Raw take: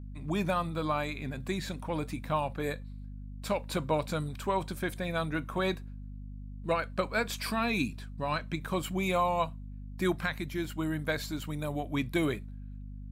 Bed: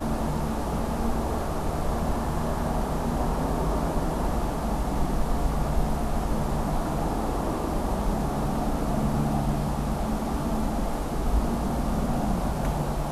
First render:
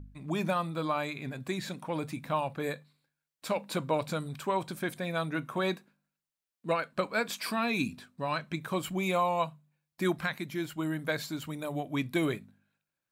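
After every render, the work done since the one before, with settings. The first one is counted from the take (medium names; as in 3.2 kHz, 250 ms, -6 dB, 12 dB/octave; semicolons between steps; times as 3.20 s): de-hum 50 Hz, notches 5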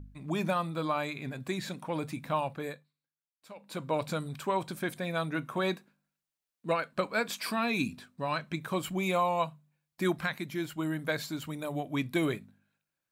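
2.46–4.02 s: dip -17 dB, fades 0.46 s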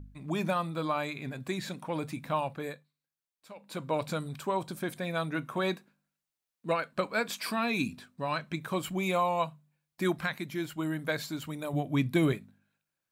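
4.26–4.89 s: dynamic bell 2.1 kHz, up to -5 dB, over -50 dBFS, Q 1.1; 11.73–12.33 s: peaking EQ 120 Hz +7.5 dB 2.4 oct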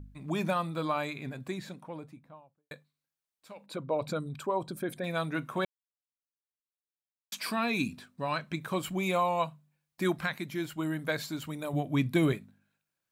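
0.97–2.71 s: studio fade out; 3.66–5.04 s: resonances exaggerated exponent 1.5; 5.65–7.32 s: mute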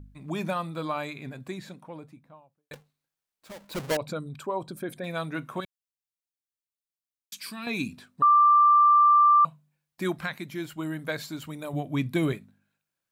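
2.73–3.97 s: square wave that keeps the level; 5.60–7.67 s: peaking EQ 680 Hz -14.5 dB 2.7 oct; 8.22–9.45 s: bleep 1.18 kHz -14.5 dBFS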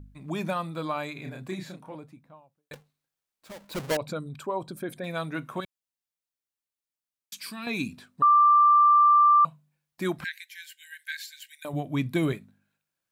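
1.13–1.95 s: doubling 32 ms -3.5 dB; 10.24–11.65 s: brick-wall FIR high-pass 1.5 kHz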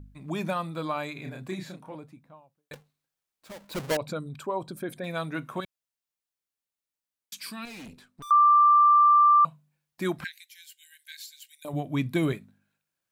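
7.65–8.31 s: valve stage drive 41 dB, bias 0.8; 10.27–11.68 s: peaking EQ 1.6 kHz -15 dB 1.2 oct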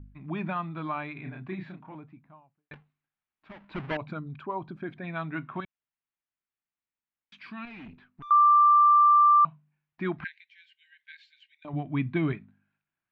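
low-pass 2.7 kHz 24 dB/octave; peaking EQ 510 Hz -14.5 dB 0.41 oct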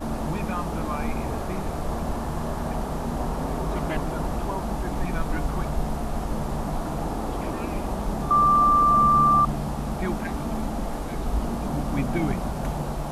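add bed -1.5 dB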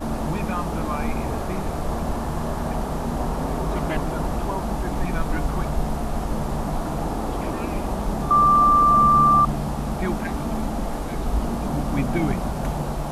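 trim +2.5 dB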